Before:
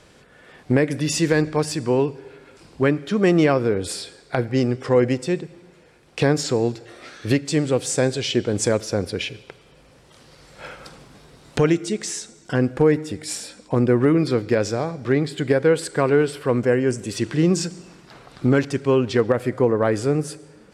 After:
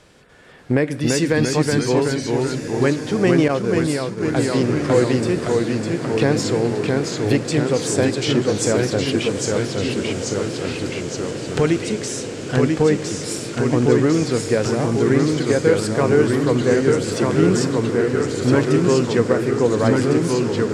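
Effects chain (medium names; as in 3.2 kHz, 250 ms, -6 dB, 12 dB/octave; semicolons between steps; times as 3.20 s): echo that smears into a reverb 1532 ms, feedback 75%, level -11 dB; ever faster or slower copies 293 ms, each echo -1 st, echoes 3; 3.48–4.36 s: expander -14 dBFS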